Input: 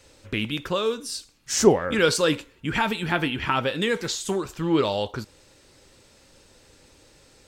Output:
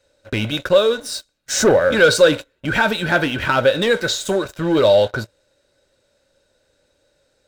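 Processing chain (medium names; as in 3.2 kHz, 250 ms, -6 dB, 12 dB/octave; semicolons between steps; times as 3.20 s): dynamic bell 110 Hz, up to +7 dB, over -53 dBFS, Q 7.5; waveshaping leveller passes 3; small resonant body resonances 580/1500/3800 Hz, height 14 dB, ringing for 30 ms; trim -7 dB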